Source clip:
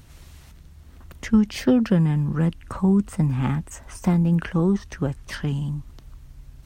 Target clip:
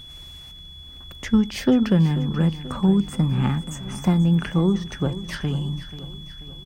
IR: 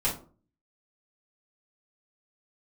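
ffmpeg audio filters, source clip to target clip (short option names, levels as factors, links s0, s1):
-filter_complex "[0:a]aeval=exprs='val(0)+0.01*sin(2*PI*3400*n/s)':c=same,aecho=1:1:486|972|1458|1944|2430:0.188|0.0979|0.0509|0.0265|0.0138,asplit=2[s0][s1];[1:a]atrim=start_sample=2205[s2];[s1][s2]afir=irnorm=-1:irlink=0,volume=0.0501[s3];[s0][s3]amix=inputs=2:normalize=0"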